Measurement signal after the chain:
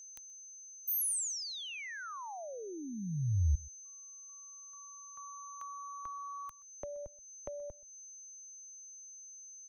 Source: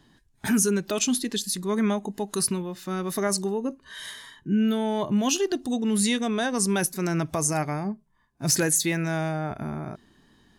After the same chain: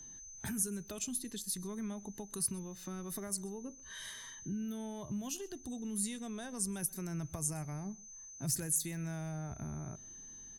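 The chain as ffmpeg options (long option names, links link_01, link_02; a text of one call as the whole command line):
ffmpeg -i in.wav -filter_complex "[0:a]lowshelf=frequency=87:gain=11,aeval=exprs='val(0)+0.00794*sin(2*PI*6200*n/s)':channel_layout=same,acrossover=split=130|7700[link_01][link_02][link_03];[link_02]acompressor=threshold=-37dB:ratio=6[link_04];[link_01][link_04][link_03]amix=inputs=3:normalize=0,aecho=1:1:127:0.0708,volume=-6.5dB" out.wav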